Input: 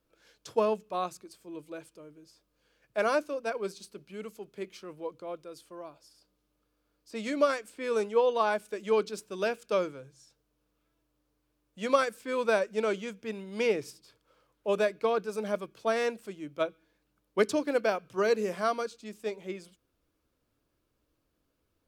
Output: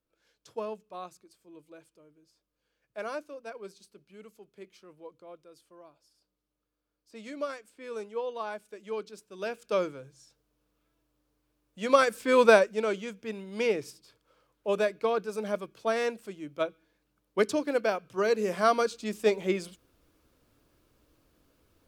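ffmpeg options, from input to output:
ffmpeg -i in.wav -af "volume=20dB,afade=type=in:start_time=9.31:duration=0.52:silence=0.316228,afade=type=in:start_time=11.86:duration=0.56:silence=0.354813,afade=type=out:start_time=12.42:duration=0.33:silence=0.316228,afade=type=in:start_time=18.35:duration=0.86:silence=0.316228" out.wav

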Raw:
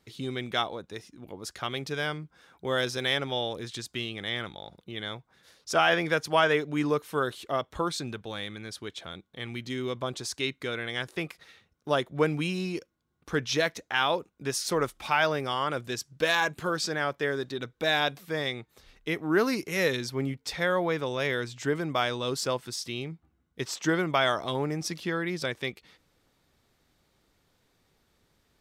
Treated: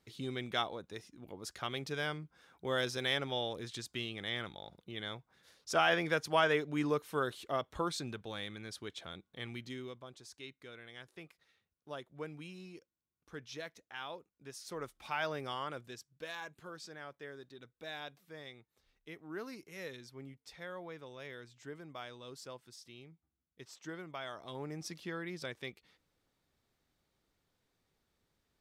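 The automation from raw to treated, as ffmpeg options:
ffmpeg -i in.wav -af "volume=11dB,afade=type=out:start_time=9.43:duration=0.59:silence=0.237137,afade=type=in:start_time=14.56:duration=0.93:silence=0.354813,afade=type=out:start_time=15.49:duration=0.61:silence=0.334965,afade=type=in:start_time=24.3:duration=0.5:silence=0.398107" out.wav

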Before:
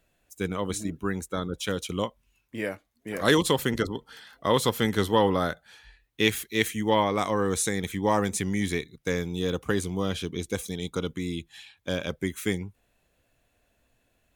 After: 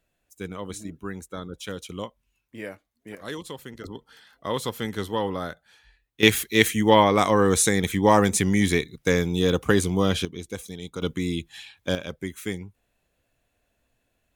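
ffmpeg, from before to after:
ffmpeg -i in.wav -af "asetnsamples=nb_out_samples=441:pad=0,asendcmd='3.15 volume volume -14dB;3.84 volume volume -5dB;6.23 volume volume 6.5dB;10.25 volume volume -4dB;11.02 volume volume 4.5dB;11.95 volume volume -3dB',volume=-5dB" out.wav

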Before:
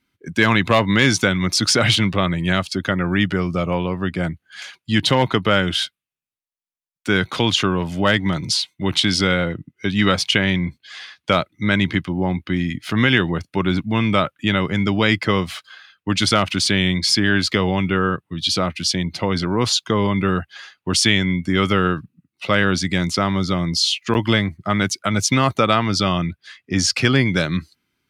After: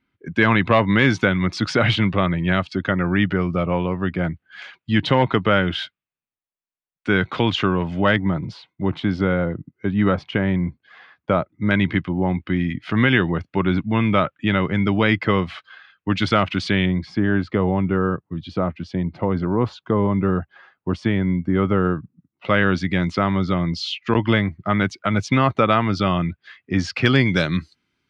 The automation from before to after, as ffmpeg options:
ffmpeg -i in.wav -af "asetnsamples=nb_out_samples=441:pad=0,asendcmd='8.16 lowpass f 1200;11.71 lowpass f 2500;16.86 lowpass f 1100;22.45 lowpass f 2500;27.06 lowpass f 5900',lowpass=2500" out.wav

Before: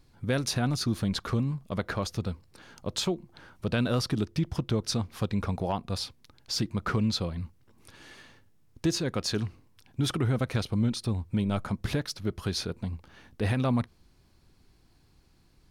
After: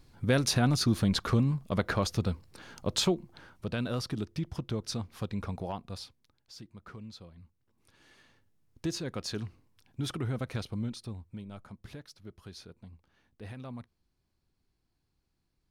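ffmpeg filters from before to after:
ffmpeg -i in.wav -af "volume=14.5dB,afade=type=out:start_time=3.08:duration=0.62:silence=0.398107,afade=type=out:start_time=5.59:duration=0.94:silence=0.223872,afade=type=in:start_time=7.36:duration=1.52:silence=0.237137,afade=type=out:start_time=10.6:duration=0.85:silence=0.316228" out.wav

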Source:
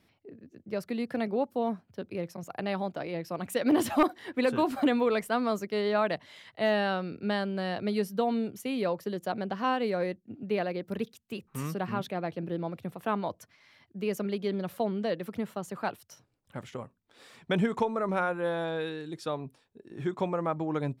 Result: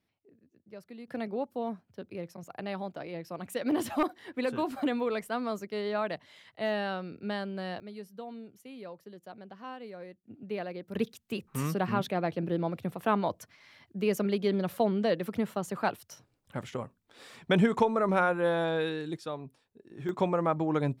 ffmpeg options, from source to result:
ffmpeg -i in.wav -af "asetnsamples=nb_out_samples=441:pad=0,asendcmd='1.08 volume volume -4.5dB;7.8 volume volume -14.5dB;10.24 volume volume -6dB;10.95 volume volume 3dB;19.17 volume volume -4dB;20.09 volume volume 2.5dB',volume=-13.5dB" out.wav

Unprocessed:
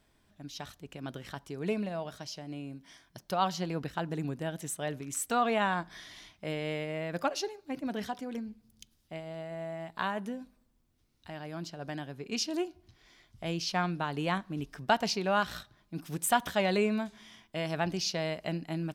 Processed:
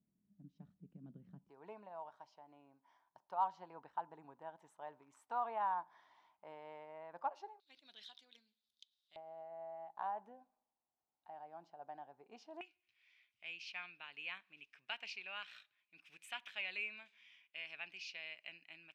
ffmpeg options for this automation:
ffmpeg -i in.wav -af "asetnsamples=nb_out_samples=441:pad=0,asendcmd='1.49 bandpass f 910;7.6 bandpass f 3700;9.16 bandpass f 810;12.61 bandpass f 2500',bandpass=frequency=190:width_type=q:width=6.8:csg=0" out.wav

